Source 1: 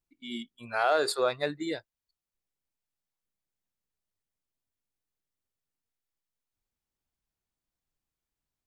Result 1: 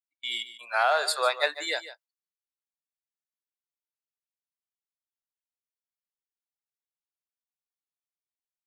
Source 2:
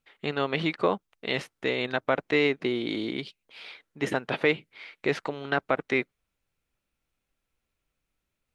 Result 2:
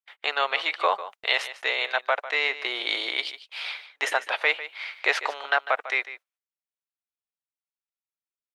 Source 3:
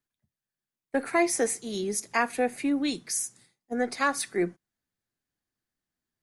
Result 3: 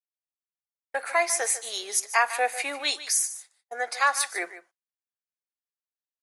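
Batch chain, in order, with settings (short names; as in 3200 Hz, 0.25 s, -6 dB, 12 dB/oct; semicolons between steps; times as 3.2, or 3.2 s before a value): HPF 660 Hz 24 dB/oct; gate -56 dBFS, range -25 dB; vocal rider within 5 dB 0.5 s; on a send: echo 0.149 s -14 dB; on the sum: gain +6 dB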